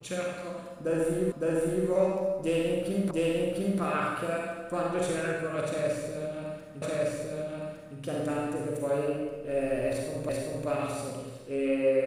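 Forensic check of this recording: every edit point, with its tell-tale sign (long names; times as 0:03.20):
0:01.32: the same again, the last 0.56 s
0:03.11: the same again, the last 0.7 s
0:06.82: the same again, the last 1.16 s
0:10.29: the same again, the last 0.39 s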